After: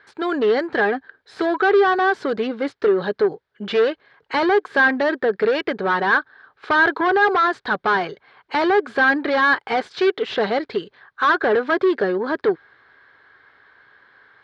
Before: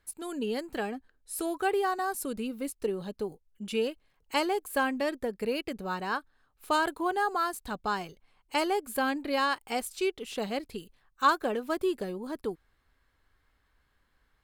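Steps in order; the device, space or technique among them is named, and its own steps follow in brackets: overdrive pedal into a guitar cabinet (overdrive pedal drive 27 dB, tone 3.7 kHz, clips at -11.5 dBFS; cabinet simulation 88–4100 Hz, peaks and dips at 120 Hz +6 dB, 230 Hz -3 dB, 410 Hz +6 dB, 1.6 kHz +8 dB, 2.7 kHz -8 dB)

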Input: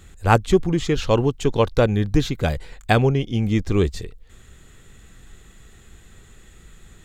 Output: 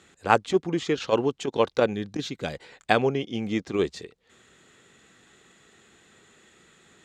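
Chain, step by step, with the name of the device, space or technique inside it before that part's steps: 1.93–2.54 s: peaking EQ 920 Hz -6.5 dB 2.7 oct; public-address speaker with an overloaded transformer (transformer saturation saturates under 150 Hz; band-pass 250–6900 Hz); trim -2 dB

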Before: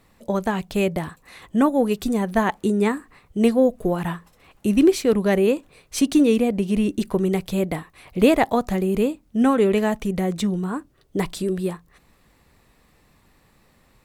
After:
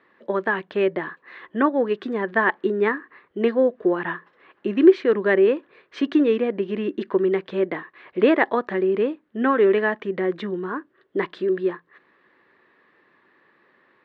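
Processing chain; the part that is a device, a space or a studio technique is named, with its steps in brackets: phone earpiece (cabinet simulation 340–3100 Hz, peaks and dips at 360 Hz +8 dB, 740 Hz -6 dB, 1.1 kHz +3 dB, 1.7 kHz +10 dB, 2.5 kHz -4 dB)

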